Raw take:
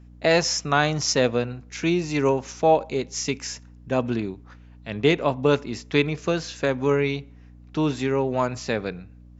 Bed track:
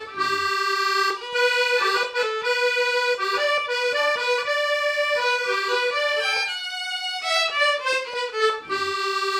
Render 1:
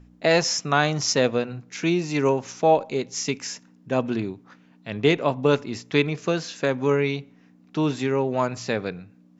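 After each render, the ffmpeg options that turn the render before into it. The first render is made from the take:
-af "bandreject=f=60:t=h:w=4,bandreject=f=120:t=h:w=4"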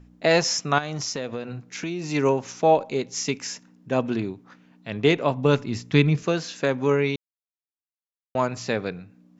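-filter_complex "[0:a]asettb=1/sr,asplit=3[s0][s1][s2];[s0]atrim=end=0.784[s3];[s1]atrim=start=0.78:end=2.11,asetpts=PTS-STARTPTS,afade=t=in:d=0.004:c=qsin,afade=t=out:st=1.326:d=0.004:c=qsin,acompressor=threshold=0.0501:ratio=6:attack=3.2:release=140:knee=1:detection=peak[s4];[s2]atrim=start=2.106[s5];[s3][s4]acrossfade=d=0.004:c1=hsin:c2=qsin[s6];[s6][s5]acrossfade=d=0.004:c1=qsin:c2=hsin,asettb=1/sr,asplit=3[s7][s8][s9];[s7]atrim=end=5.214[s10];[s8]atrim=start=5.21:end=6.23,asetpts=PTS-STARTPTS,afade=t=in:d=0.004:c=qsin,afade=t=out:st=1.016:d=0.004:c=qsin,asubboost=boost=11:cutoff=240[s11];[s9]atrim=start=6.226[s12];[s10][s11]acrossfade=d=0.004:c1=hsin:c2=qsin[s13];[s13][s12]acrossfade=d=0.004:c1=qsin:c2=hsin,asplit=3[s14][s15][s16];[s14]atrim=end=7.16,asetpts=PTS-STARTPTS,afade=t=out:st=7.156:d=0.004:c=hsin[s17];[s15]atrim=start=7.16:end=8.35,asetpts=PTS-STARTPTS,volume=0[s18];[s16]atrim=start=8.35,asetpts=PTS-STARTPTS,afade=t=in:d=0.004:c=hsin[s19];[s17][s18][s19]concat=n=3:v=0:a=1"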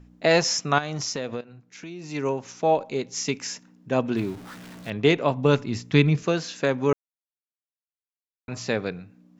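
-filter_complex "[0:a]asettb=1/sr,asplit=3[s0][s1][s2];[s0]atrim=end=4.164[s3];[s1]atrim=start=4.16:end=4.9,asetpts=PTS-STARTPTS,afade=t=in:d=0.004:c=qsin,afade=t=out:st=0.736:d=0.004:c=qsin,aeval=exprs='val(0)+0.5*0.0119*sgn(val(0))':c=same[s4];[s2]atrim=start=4.896[s5];[s3][s4]acrossfade=d=0.004:c1=hsin:c2=qsin[s6];[s6][s5]acrossfade=d=0.004:c1=qsin:c2=hsin,asplit=4[s7][s8][s9][s10];[s7]atrim=end=1.41,asetpts=PTS-STARTPTS,afade=t=out:st=1.406:d=0.004:c=hsin:silence=0.188365[s11];[s8]atrim=start=1.41:end=6.93,asetpts=PTS-STARTPTS,afade=t=in:d=2.02:silence=0.188365,afade=t=out:st=5.516:d=0.004:c=hsin[s12];[s9]atrim=start=6.93:end=8.48,asetpts=PTS-STARTPTS,volume=0[s13];[s10]atrim=start=8.48,asetpts=PTS-STARTPTS,afade=t=in:d=0.004:c=hsin[s14];[s11][s12][s13][s14]concat=n=4:v=0:a=1"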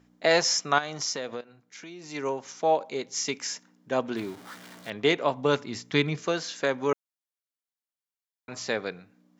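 -af "highpass=f=510:p=1,bandreject=f=2600:w=12"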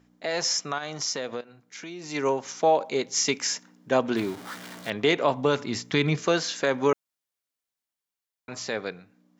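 -af "alimiter=limit=0.15:level=0:latency=1:release=48,dynaudnorm=f=350:g=9:m=1.88"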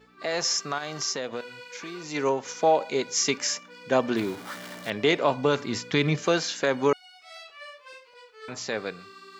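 -filter_complex "[1:a]volume=0.0668[s0];[0:a][s0]amix=inputs=2:normalize=0"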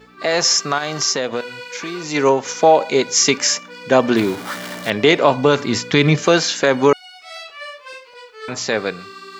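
-af "volume=3.35,alimiter=limit=0.794:level=0:latency=1"

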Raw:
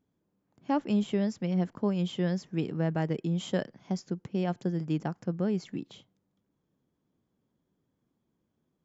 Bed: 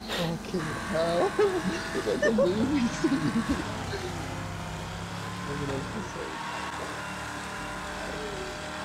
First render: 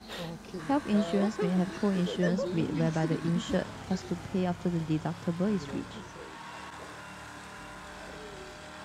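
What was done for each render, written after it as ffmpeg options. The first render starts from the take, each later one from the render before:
-filter_complex "[1:a]volume=0.355[s0];[0:a][s0]amix=inputs=2:normalize=0"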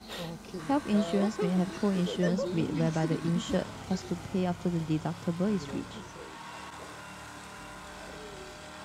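-af "highshelf=f=6800:g=4,bandreject=f=1700:w=12"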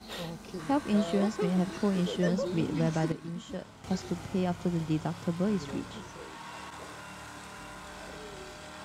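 -filter_complex "[0:a]asplit=3[s0][s1][s2];[s0]atrim=end=3.122[s3];[s1]atrim=start=3.118:end=3.842,asetpts=PTS-STARTPTS,volume=0.335[s4];[s2]atrim=start=3.838[s5];[s3][s4]acrossfade=d=0.004:c1=hsin:c2=hsin[s6];[s6][s5]acrossfade=d=0.004:c1=hsin:c2=hsin"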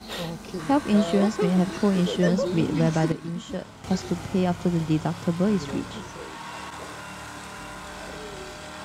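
-af "volume=2.11"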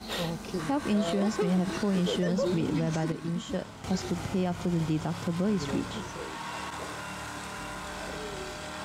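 -af "alimiter=limit=0.106:level=0:latency=1:release=69"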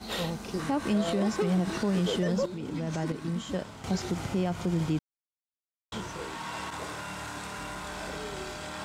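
-filter_complex "[0:a]asplit=4[s0][s1][s2][s3];[s0]atrim=end=2.46,asetpts=PTS-STARTPTS,afade=t=out:st=2.456:d=0.004:c=hsin:silence=0.223872[s4];[s1]atrim=start=2.46:end=4.99,asetpts=PTS-STARTPTS,afade=t=in:d=0.74:silence=0.223872,afade=t=out:st=2.526:d=0.004:c=hsin[s5];[s2]atrim=start=4.99:end=5.92,asetpts=PTS-STARTPTS,volume=0[s6];[s3]atrim=start=5.92,asetpts=PTS-STARTPTS,afade=t=in:d=0.004:c=hsin[s7];[s4][s5][s6][s7]concat=n=4:v=0:a=1"

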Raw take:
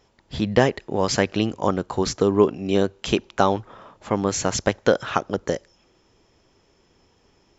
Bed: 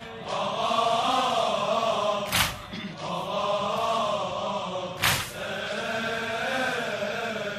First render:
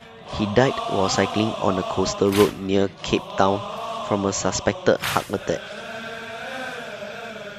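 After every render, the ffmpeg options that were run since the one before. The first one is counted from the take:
-filter_complex "[1:a]volume=0.631[s0];[0:a][s0]amix=inputs=2:normalize=0"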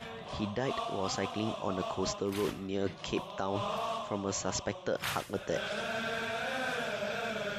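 -af "alimiter=limit=0.447:level=0:latency=1:release=195,areverse,acompressor=threshold=0.0282:ratio=5,areverse"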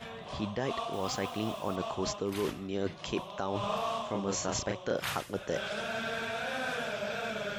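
-filter_complex "[0:a]asettb=1/sr,asplit=3[s0][s1][s2];[s0]atrim=end=0.934[s3];[s1]atrim=start=0.93:end=1.76,asetpts=PTS-STARTPTS,afade=t=in:d=0.004:c=qsin,afade=t=out:st=0.826:d=0.004:c=qsin,acrusher=bits=7:mix=0:aa=0.5[s4];[s2]atrim=start=1.756[s5];[s3][s4]acrossfade=d=0.004:c1=hsin:c2=qsin[s6];[s6][s5]acrossfade=d=0.004:c1=qsin:c2=hsin,asettb=1/sr,asplit=3[s7][s8][s9];[s7]atrim=end=3.604[s10];[s8]atrim=start=3.6:end=5.01,asetpts=PTS-STARTPTS,afade=t=in:d=0.004:c=qsin,afade=t=out:st=1.406:d=0.004:c=qsin,asplit=2[s11][s12];[s12]adelay=35,volume=0.631[s13];[s11][s13]amix=inputs=2:normalize=0,atrim=end_sample=62181[s14];[s9]atrim=start=5.006[s15];[s10][s14]acrossfade=d=0.004:c1=hsin:c2=qsin[s16];[s16][s15]acrossfade=d=0.004:c1=qsin:c2=hsin"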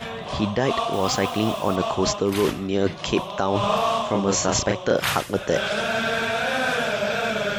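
-af "volume=3.76"

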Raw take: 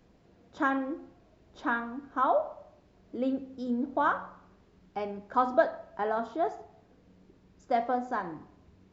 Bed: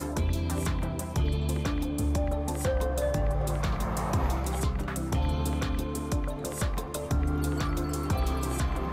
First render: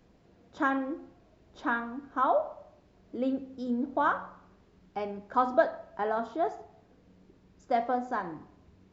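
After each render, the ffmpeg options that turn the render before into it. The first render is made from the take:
-af anull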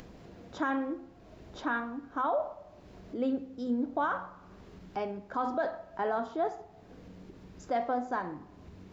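-af "alimiter=limit=0.0794:level=0:latency=1:release=30,acompressor=mode=upward:threshold=0.0112:ratio=2.5"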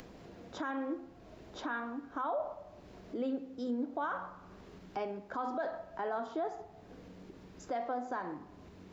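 -filter_complex "[0:a]acrossover=split=210|1500[s0][s1][s2];[s0]acompressor=threshold=0.00158:ratio=6[s3];[s3][s1][s2]amix=inputs=3:normalize=0,alimiter=level_in=1.5:limit=0.0631:level=0:latency=1:release=127,volume=0.668"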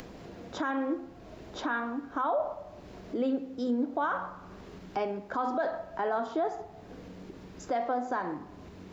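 -af "volume=2"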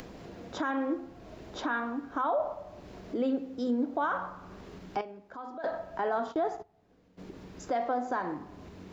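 -filter_complex "[0:a]asplit=3[s0][s1][s2];[s0]afade=t=out:st=6.31:d=0.02[s3];[s1]agate=range=0.126:threshold=0.01:ratio=16:release=100:detection=peak,afade=t=in:st=6.31:d=0.02,afade=t=out:st=7.17:d=0.02[s4];[s2]afade=t=in:st=7.17:d=0.02[s5];[s3][s4][s5]amix=inputs=3:normalize=0,asplit=3[s6][s7][s8];[s6]atrim=end=5.012[s9];[s7]atrim=start=5.008:end=5.642,asetpts=PTS-STARTPTS,volume=0.266[s10];[s8]atrim=start=5.638[s11];[s9][s10]acrossfade=d=0.004:c1=hsin:c2=hsin[s12];[s12][s11]acrossfade=d=0.004:c1=hsin:c2=hsin"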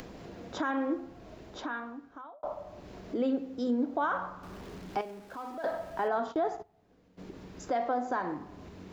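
-filter_complex "[0:a]asettb=1/sr,asplit=3[s0][s1][s2];[s0]atrim=end=4.434[s3];[s1]atrim=start=4.43:end=6.08,asetpts=PTS-STARTPTS,afade=t=in:d=0.004:c=qsin,afade=t=out:st=1.646:d=0.004:c=qsin,aeval=exprs='val(0)+0.5*0.00335*sgn(val(0))':c=same[s4];[s2]atrim=start=6.076[s5];[s3][s4]acrossfade=d=0.004:c1=hsin:c2=qsin[s6];[s6][s5]acrossfade=d=0.004:c1=qsin:c2=hsin,asplit=2[s7][s8];[s7]atrim=end=2.43,asetpts=PTS-STARTPTS,afade=t=out:st=1.13:d=1.3[s9];[s8]atrim=start=2.43,asetpts=PTS-STARTPTS,afade=t=in:d=0.004:c=hsin[s10];[s9][s10]concat=n=2:v=0:a=1"

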